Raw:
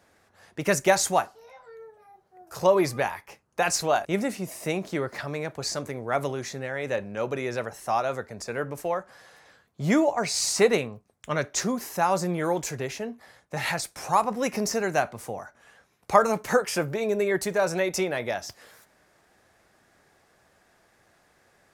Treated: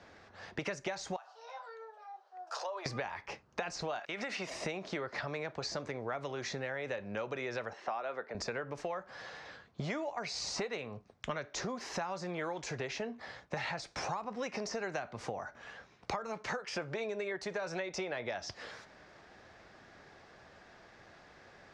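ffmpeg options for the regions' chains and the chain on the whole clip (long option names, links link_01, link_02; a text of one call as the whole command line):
ffmpeg -i in.wav -filter_complex "[0:a]asettb=1/sr,asplit=3[link_01][link_02][link_03];[link_01]atrim=end=1.164[link_04];[link_02]atrim=start=1.16:end=2.86,asetpts=PTS-STARTPTS,afade=type=in:duration=0.004:curve=qsin,afade=type=out:start_time=1.696:duration=0.004:curve=qsin,equalizer=frequency=2100:width_type=o:width=0.44:gain=-8,acompressor=threshold=-36dB:ratio=4:attack=3.2:release=140:knee=1:detection=peak,highpass=frequency=610:width=0.5412,highpass=frequency=610:width=1.3066[link_05];[link_03]atrim=start=2.856[link_06];[link_04][link_05]acrossfade=duration=0.004:curve1=hsin:curve2=qsin[link_07];[link_07][link_06]acrossfade=duration=0.004:curve1=qsin:curve2=hsin,asettb=1/sr,asplit=3[link_08][link_09][link_10];[link_08]atrim=end=3.994[link_11];[link_09]atrim=start=3.99:end=4.5,asetpts=PTS-STARTPTS,afade=type=in:duration=0.004:curve=qsin,afade=type=out:start_time=0.506:duration=0.004:curve=qsin,highpass=frequency=730:poles=1,equalizer=frequency=2100:width_type=o:width=2.7:gain=8.5,acompressor=threshold=-31dB:ratio=6:attack=3.2:release=140:knee=1:detection=peak[link_12];[link_10]atrim=start=4.496[link_13];[link_11][link_12]acrossfade=duration=0.004:curve1=hsin:curve2=qsin[link_14];[link_14][link_13]acrossfade=duration=0.004:curve1=qsin:curve2=hsin,asettb=1/sr,asplit=3[link_15][link_16][link_17];[link_15]atrim=end=7.734[link_18];[link_16]atrim=start=7.73:end=8.35,asetpts=PTS-STARTPTS,afade=type=in:duration=0.004:curve=qsin,afade=type=out:start_time=0.616:duration=0.004:curve=qsin,acompressor=mode=upward:threshold=-40dB:ratio=2.5:attack=3.2:release=140:knee=2.83:detection=peak,highpass=340,lowpass=3100[link_19];[link_17]atrim=start=8.346[link_20];[link_18][link_19]acrossfade=duration=0.004:curve1=hsin:curve2=qsin[link_21];[link_21][link_20]acrossfade=duration=0.004:curve1=qsin:curve2=hsin,acrossover=split=480|1100[link_22][link_23][link_24];[link_22]acompressor=threshold=-39dB:ratio=4[link_25];[link_23]acompressor=threshold=-33dB:ratio=4[link_26];[link_24]acompressor=threshold=-33dB:ratio=4[link_27];[link_25][link_26][link_27]amix=inputs=3:normalize=0,lowpass=frequency=5500:width=0.5412,lowpass=frequency=5500:width=1.3066,acompressor=threshold=-41dB:ratio=6,volume=5.5dB" out.wav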